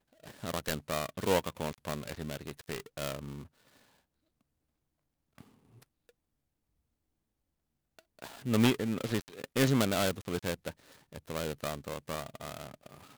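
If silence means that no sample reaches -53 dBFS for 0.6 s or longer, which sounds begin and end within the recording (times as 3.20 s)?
5.38–6.10 s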